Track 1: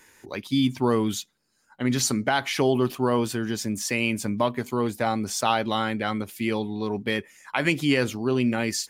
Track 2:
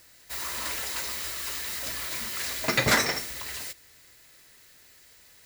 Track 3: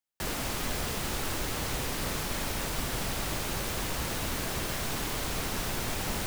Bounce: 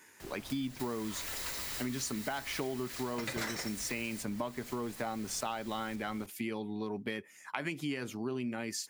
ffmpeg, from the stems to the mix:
-filter_complex "[0:a]highpass=120,equalizer=f=3.8k:t=o:w=0.77:g=-3,bandreject=f=510:w=12,volume=-3dB[a];[1:a]acompressor=mode=upward:threshold=-30dB:ratio=2.5,adelay=500,volume=-5.5dB[b];[2:a]volume=-17dB[c];[a][b][c]amix=inputs=3:normalize=0,acompressor=threshold=-34dB:ratio=5"

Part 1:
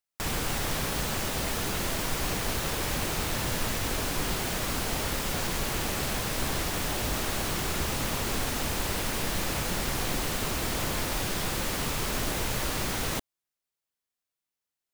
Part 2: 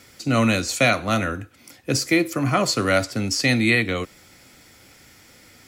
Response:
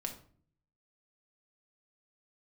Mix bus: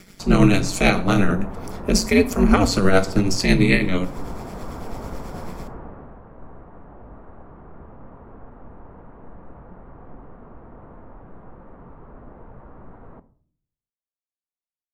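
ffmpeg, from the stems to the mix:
-filter_complex "[0:a]lowpass=f=1.2k:w=0.5412,lowpass=f=1.2k:w=1.3066,volume=-7dB,afade=t=out:st=5.42:d=0.75:silence=0.298538,asplit=2[a][b];[b]volume=-4.5dB[c];[1:a]tremolo=f=9.1:d=0.52,lowshelf=f=260:g=11,aeval=exprs='val(0)*sin(2*PI*94*n/s)':c=same,volume=0dB,asplit=2[d][e];[e]volume=-4dB[f];[2:a]atrim=start_sample=2205[g];[c][f]amix=inputs=2:normalize=0[h];[h][g]afir=irnorm=-1:irlink=0[i];[a][d][i]amix=inputs=3:normalize=0,dynaudnorm=f=190:g=3:m=3dB"

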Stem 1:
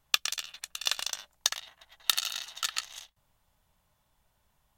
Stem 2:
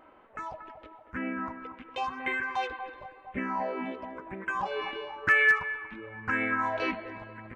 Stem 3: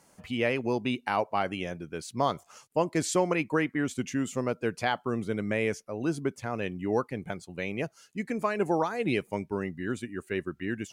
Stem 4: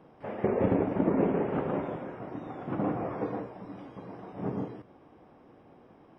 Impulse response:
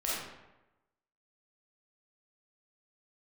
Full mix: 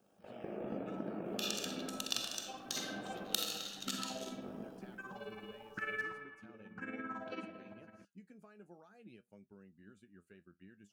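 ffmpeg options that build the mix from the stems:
-filter_complex "[0:a]adelay=1250,volume=2dB,asplit=2[a][b];[b]volume=-18dB[c];[1:a]highpass=f=110:w=0.5412,highpass=f=110:w=1.3066,tremolo=f=18:d=0.83,adelay=500,volume=-13dB,asplit=2[d][e];[e]volume=-9dB[f];[2:a]equalizer=f=1.6k:w=1.5:g=6,acompressor=threshold=-36dB:ratio=3,flanger=delay=7.9:depth=4:regen=59:speed=0.53:shape=sinusoidal,volume=-17.5dB[g];[3:a]aemphasis=mode=production:type=riaa,volume=-12dB,asplit=2[h][i];[i]volume=-7.5dB[j];[a][h]amix=inputs=2:normalize=0,aeval=exprs='val(0)*sin(2*PI*50*n/s)':c=same,acompressor=threshold=-44dB:ratio=2,volume=0dB[k];[4:a]atrim=start_sample=2205[l];[c][f][j]amix=inputs=3:normalize=0[m];[m][l]afir=irnorm=-1:irlink=0[n];[d][g][k][n]amix=inputs=4:normalize=0,equalizer=f=200:t=o:w=0.33:g=9,equalizer=f=1k:t=o:w=0.33:g=-10,equalizer=f=2k:t=o:w=0.33:g=-12"

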